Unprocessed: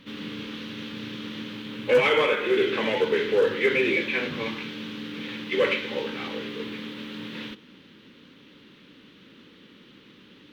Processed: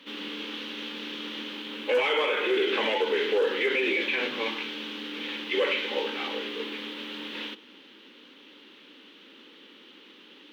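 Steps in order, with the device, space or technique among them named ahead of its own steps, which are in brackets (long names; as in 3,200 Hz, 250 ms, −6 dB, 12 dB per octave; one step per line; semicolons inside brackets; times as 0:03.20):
laptop speaker (high-pass filter 270 Hz 24 dB per octave; parametric band 840 Hz +5 dB 0.34 octaves; parametric band 3,000 Hz +5 dB 0.52 octaves; brickwall limiter −17 dBFS, peak gain reduction 7.5 dB)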